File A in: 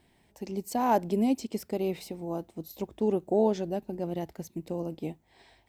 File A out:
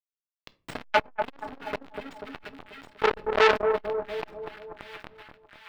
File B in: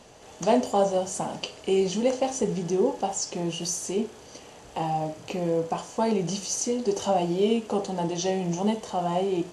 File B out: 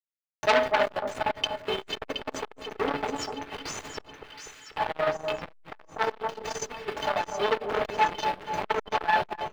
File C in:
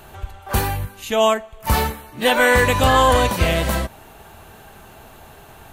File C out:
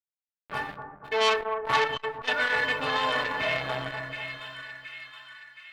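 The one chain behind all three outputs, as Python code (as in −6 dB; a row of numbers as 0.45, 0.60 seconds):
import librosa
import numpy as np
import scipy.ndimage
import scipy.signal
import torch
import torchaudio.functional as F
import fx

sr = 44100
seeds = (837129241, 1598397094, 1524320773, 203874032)

p1 = fx.wiener(x, sr, points=15)
p2 = fx.weighting(p1, sr, curve='ITU-R 468')
p3 = fx.rider(p2, sr, range_db=5, speed_s=0.5)
p4 = p2 + (p3 * librosa.db_to_amplitude(2.0))
p5 = fx.stiff_resonator(p4, sr, f0_hz=130.0, decay_s=0.36, stiffness=0.03)
p6 = fx.quant_dither(p5, sr, seeds[0], bits=6, dither='none')
p7 = fx.air_absorb(p6, sr, metres=470.0)
p8 = p7 + fx.echo_split(p7, sr, split_hz=1400.0, low_ms=244, high_ms=721, feedback_pct=52, wet_db=-8.5, dry=0)
p9 = fx.room_shoebox(p8, sr, seeds[1], volume_m3=250.0, walls='furnished', distance_m=0.42)
p10 = fx.transformer_sat(p9, sr, knee_hz=2600.0)
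y = p10 * 10.0 ** (-30 / 20.0) / np.sqrt(np.mean(np.square(p10)))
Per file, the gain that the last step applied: +18.5, +13.5, +4.5 decibels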